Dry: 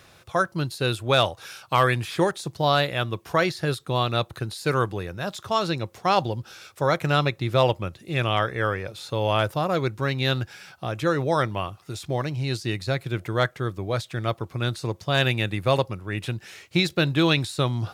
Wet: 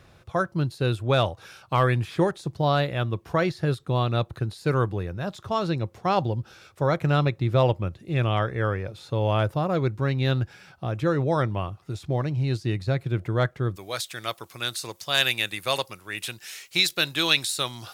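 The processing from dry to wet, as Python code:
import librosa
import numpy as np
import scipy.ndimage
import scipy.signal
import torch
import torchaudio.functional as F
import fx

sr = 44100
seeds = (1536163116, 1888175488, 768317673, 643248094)

y = fx.tilt_eq(x, sr, slope=fx.steps((0.0, -2.0), (13.75, 4.0)))
y = y * 10.0 ** (-3.0 / 20.0)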